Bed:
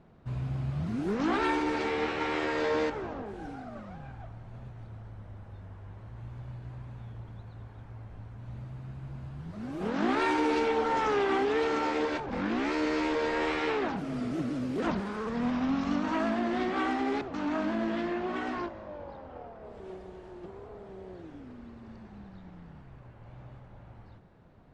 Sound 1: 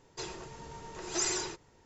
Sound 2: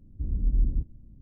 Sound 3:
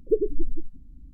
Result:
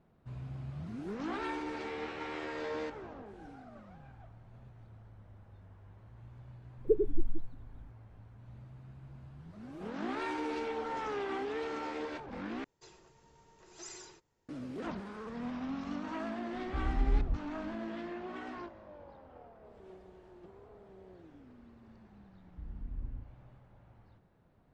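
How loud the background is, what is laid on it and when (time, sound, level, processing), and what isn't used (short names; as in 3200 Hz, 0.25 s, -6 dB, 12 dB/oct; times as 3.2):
bed -9.5 dB
6.78 add 3 -5 dB
12.64 replace with 1 -16.5 dB
16.54 add 2 -5.5 dB
22.38 add 2 -16 dB + flutter echo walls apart 6.3 m, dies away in 0.49 s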